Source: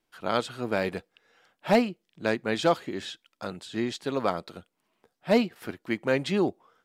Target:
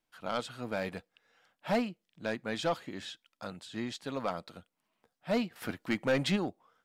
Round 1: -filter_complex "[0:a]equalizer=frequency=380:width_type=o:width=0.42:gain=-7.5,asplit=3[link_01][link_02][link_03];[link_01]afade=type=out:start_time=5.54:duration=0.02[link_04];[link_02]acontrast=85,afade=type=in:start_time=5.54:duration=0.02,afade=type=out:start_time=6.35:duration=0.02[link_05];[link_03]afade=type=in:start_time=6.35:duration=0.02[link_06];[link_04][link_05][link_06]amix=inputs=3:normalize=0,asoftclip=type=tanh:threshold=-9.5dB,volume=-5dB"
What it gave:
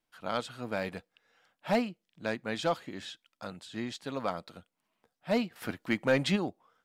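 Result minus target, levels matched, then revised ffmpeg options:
soft clipping: distortion −9 dB
-filter_complex "[0:a]equalizer=frequency=380:width_type=o:width=0.42:gain=-7.5,asplit=3[link_01][link_02][link_03];[link_01]afade=type=out:start_time=5.54:duration=0.02[link_04];[link_02]acontrast=85,afade=type=in:start_time=5.54:duration=0.02,afade=type=out:start_time=6.35:duration=0.02[link_05];[link_03]afade=type=in:start_time=6.35:duration=0.02[link_06];[link_04][link_05][link_06]amix=inputs=3:normalize=0,asoftclip=type=tanh:threshold=-16.5dB,volume=-5dB"

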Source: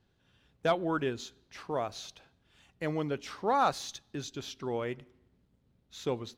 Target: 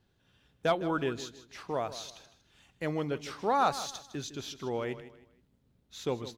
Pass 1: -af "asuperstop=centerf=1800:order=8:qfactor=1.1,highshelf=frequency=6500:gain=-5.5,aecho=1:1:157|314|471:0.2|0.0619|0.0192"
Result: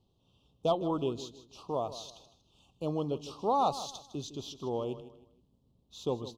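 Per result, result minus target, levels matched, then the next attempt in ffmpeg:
2,000 Hz band −19.0 dB; 8,000 Hz band −3.5 dB
-af "highshelf=frequency=6500:gain=-5.5,aecho=1:1:157|314|471:0.2|0.0619|0.0192"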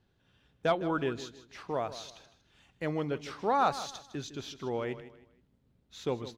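8,000 Hz band −4.0 dB
-af "highshelf=frequency=6500:gain=3,aecho=1:1:157|314|471:0.2|0.0619|0.0192"

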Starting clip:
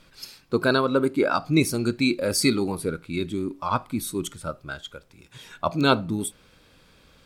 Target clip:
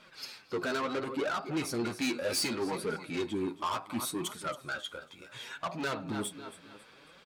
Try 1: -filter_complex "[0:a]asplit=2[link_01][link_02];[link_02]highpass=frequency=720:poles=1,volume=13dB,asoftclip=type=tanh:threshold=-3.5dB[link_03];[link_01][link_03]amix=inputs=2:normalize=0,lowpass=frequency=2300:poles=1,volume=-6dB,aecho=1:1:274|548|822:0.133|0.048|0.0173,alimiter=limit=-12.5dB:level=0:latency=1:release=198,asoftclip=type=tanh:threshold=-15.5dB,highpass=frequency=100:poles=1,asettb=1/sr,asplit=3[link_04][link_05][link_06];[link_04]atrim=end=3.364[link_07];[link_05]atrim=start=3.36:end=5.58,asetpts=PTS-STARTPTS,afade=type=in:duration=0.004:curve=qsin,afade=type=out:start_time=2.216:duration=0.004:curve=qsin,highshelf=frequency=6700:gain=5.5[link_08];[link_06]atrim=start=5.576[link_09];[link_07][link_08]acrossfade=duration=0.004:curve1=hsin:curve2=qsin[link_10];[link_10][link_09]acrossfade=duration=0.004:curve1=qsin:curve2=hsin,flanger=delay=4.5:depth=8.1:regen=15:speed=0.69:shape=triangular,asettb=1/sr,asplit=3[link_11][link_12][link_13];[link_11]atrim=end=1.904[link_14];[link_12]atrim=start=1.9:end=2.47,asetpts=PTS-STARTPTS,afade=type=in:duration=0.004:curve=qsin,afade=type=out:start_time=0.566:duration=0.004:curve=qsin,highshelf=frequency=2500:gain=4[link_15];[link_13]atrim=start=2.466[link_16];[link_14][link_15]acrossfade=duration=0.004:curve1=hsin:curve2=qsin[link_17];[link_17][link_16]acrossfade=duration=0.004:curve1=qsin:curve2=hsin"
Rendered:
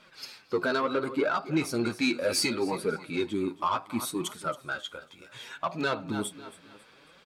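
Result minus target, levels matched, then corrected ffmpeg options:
soft clipping: distortion −11 dB
-filter_complex "[0:a]asplit=2[link_01][link_02];[link_02]highpass=frequency=720:poles=1,volume=13dB,asoftclip=type=tanh:threshold=-3.5dB[link_03];[link_01][link_03]amix=inputs=2:normalize=0,lowpass=frequency=2300:poles=1,volume=-6dB,aecho=1:1:274|548|822:0.133|0.048|0.0173,alimiter=limit=-12.5dB:level=0:latency=1:release=198,asoftclip=type=tanh:threshold=-26dB,highpass=frequency=100:poles=1,asettb=1/sr,asplit=3[link_04][link_05][link_06];[link_04]atrim=end=3.364[link_07];[link_05]atrim=start=3.36:end=5.58,asetpts=PTS-STARTPTS,afade=type=in:duration=0.004:curve=qsin,afade=type=out:start_time=2.216:duration=0.004:curve=qsin,highshelf=frequency=6700:gain=5.5[link_08];[link_06]atrim=start=5.576[link_09];[link_07][link_08]acrossfade=duration=0.004:curve1=hsin:curve2=qsin[link_10];[link_10][link_09]acrossfade=duration=0.004:curve1=qsin:curve2=hsin,flanger=delay=4.5:depth=8.1:regen=15:speed=0.69:shape=triangular,asettb=1/sr,asplit=3[link_11][link_12][link_13];[link_11]atrim=end=1.904[link_14];[link_12]atrim=start=1.9:end=2.47,asetpts=PTS-STARTPTS,afade=type=in:duration=0.004:curve=qsin,afade=type=out:start_time=0.566:duration=0.004:curve=qsin,highshelf=frequency=2500:gain=4[link_15];[link_13]atrim=start=2.466[link_16];[link_14][link_15]acrossfade=duration=0.004:curve1=hsin:curve2=qsin[link_17];[link_17][link_16]acrossfade=duration=0.004:curve1=qsin:curve2=hsin"

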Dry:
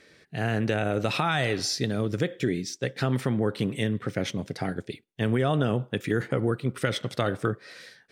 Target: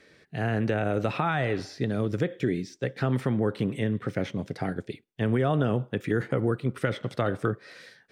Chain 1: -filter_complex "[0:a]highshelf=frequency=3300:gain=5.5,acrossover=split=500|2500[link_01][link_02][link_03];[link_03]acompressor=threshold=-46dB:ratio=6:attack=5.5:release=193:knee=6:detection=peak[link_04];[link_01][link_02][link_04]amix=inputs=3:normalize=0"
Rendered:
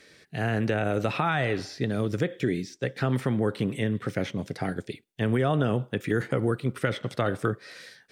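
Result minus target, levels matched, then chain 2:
8,000 Hz band +4.0 dB
-filter_complex "[0:a]highshelf=frequency=3300:gain=-5,acrossover=split=500|2500[link_01][link_02][link_03];[link_03]acompressor=threshold=-46dB:ratio=6:attack=5.5:release=193:knee=6:detection=peak[link_04];[link_01][link_02][link_04]amix=inputs=3:normalize=0"

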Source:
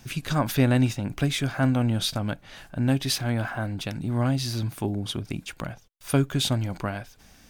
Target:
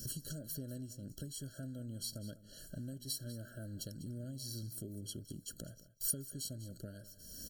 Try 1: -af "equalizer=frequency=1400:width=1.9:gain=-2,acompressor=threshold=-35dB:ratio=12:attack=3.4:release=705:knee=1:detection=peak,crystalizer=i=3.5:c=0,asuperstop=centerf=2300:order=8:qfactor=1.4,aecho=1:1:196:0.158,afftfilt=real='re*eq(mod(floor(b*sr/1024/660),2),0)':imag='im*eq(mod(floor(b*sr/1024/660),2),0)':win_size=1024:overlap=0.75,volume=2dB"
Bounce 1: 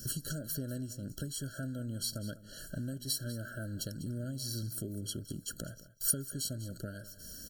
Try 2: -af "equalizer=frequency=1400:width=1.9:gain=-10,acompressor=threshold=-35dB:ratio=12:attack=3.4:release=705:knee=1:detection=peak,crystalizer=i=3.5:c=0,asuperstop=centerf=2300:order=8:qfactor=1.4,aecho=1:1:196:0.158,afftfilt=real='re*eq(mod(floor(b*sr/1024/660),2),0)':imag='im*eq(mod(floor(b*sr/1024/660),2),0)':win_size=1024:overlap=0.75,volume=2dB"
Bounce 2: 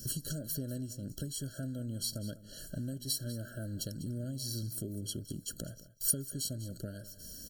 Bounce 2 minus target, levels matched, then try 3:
downward compressor: peak gain reduction −6 dB
-af "equalizer=frequency=1400:width=1.9:gain=-10,acompressor=threshold=-41.5dB:ratio=12:attack=3.4:release=705:knee=1:detection=peak,crystalizer=i=3.5:c=0,asuperstop=centerf=2300:order=8:qfactor=1.4,aecho=1:1:196:0.158,afftfilt=real='re*eq(mod(floor(b*sr/1024/660),2),0)':imag='im*eq(mod(floor(b*sr/1024/660),2),0)':win_size=1024:overlap=0.75,volume=2dB"

